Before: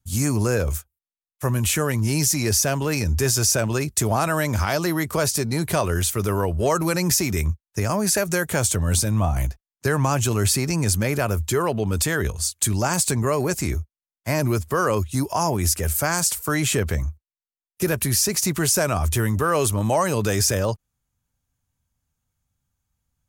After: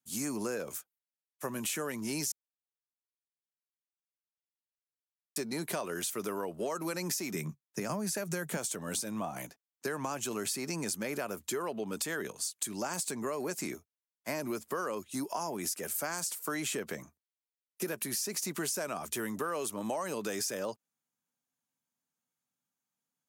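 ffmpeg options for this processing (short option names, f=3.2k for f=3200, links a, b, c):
-filter_complex "[0:a]asettb=1/sr,asplit=3[a][b][c];[a]atrim=end=7.344[d];[b]atrim=start=7.34:end=8.57,asetpts=PTS-STARTPTS,afade=t=in:d=0.004:c=qsin,afade=t=out:st=1.226:d=0.004:c=qsin,highpass=f=140:t=q:w=4.9[e];[c]atrim=start=8.566[f];[d][e]acrossfade=d=0.004:c1=hsin:c2=qsin[g];[g][f]acrossfade=d=0.004:c1=qsin:c2=hsin,asplit=3[h][i][j];[h]atrim=end=2.32,asetpts=PTS-STARTPTS,afade=t=out:st=2.316:d=0.004:c=hsin[k];[i]atrim=start=2.32:end=5.36,asetpts=PTS-STARTPTS,volume=0[l];[j]atrim=start=5.36,asetpts=PTS-STARTPTS,afade=t=in:d=0.004:c=hsin[m];[k][l][m]concat=n=3:v=0:a=1,highpass=f=200:w=0.5412,highpass=f=200:w=1.3066,acompressor=threshold=-24dB:ratio=6,volume=-7.5dB"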